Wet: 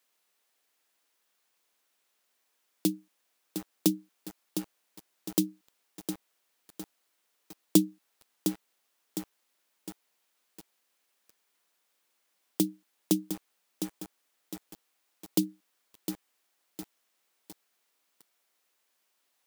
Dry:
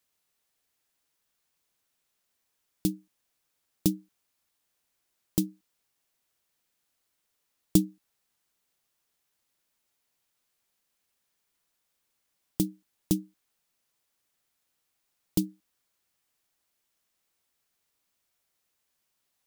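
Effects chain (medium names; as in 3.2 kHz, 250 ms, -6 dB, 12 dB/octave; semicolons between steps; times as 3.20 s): steep high-pass 160 Hz 36 dB/octave; tone controls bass -10 dB, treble -3 dB; bit-crushed delay 708 ms, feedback 55%, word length 7-bit, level -7.5 dB; trim +5 dB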